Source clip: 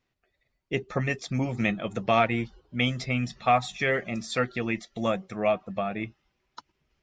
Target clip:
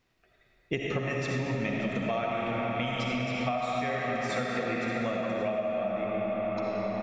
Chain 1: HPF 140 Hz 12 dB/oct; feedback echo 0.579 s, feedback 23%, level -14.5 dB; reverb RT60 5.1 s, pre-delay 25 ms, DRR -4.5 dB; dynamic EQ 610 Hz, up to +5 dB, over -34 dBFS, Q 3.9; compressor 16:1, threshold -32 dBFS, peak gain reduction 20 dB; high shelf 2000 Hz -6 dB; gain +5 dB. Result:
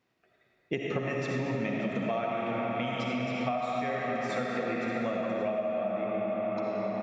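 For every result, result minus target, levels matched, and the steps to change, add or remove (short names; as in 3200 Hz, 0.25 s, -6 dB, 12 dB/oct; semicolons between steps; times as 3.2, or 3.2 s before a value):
4000 Hz band -3.0 dB; 125 Hz band -2.0 dB
remove: high shelf 2000 Hz -6 dB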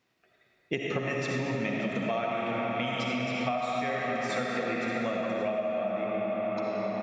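125 Hz band -3.0 dB
remove: HPF 140 Hz 12 dB/oct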